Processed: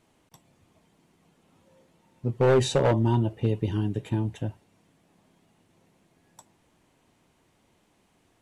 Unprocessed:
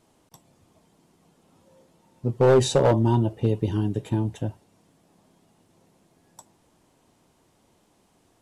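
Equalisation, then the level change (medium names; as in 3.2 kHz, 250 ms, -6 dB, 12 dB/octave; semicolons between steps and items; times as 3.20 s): bass shelf 320 Hz +3.5 dB; peaking EQ 2.2 kHz +7 dB 1.4 oct; band-stop 5.1 kHz, Q 27; -5.0 dB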